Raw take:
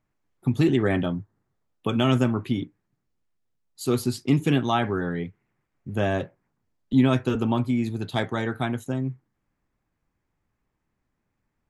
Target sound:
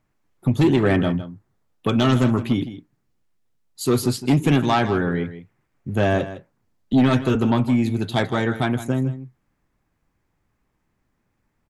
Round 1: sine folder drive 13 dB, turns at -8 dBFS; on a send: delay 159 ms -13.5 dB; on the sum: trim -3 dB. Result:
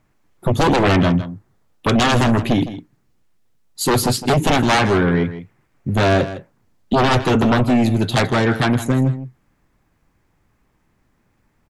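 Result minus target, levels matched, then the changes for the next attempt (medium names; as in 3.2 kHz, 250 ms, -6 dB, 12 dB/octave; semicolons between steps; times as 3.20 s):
sine folder: distortion +16 dB
change: sine folder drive 5 dB, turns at -8 dBFS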